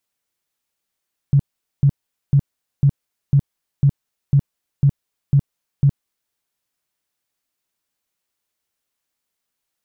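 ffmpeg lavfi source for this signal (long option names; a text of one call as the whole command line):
ffmpeg -f lavfi -i "aevalsrc='0.355*sin(2*PI*140*mod(t,0.5))*lt(mod(t,0.5),9/140)':duration=5:sample_rate=44100" out.wav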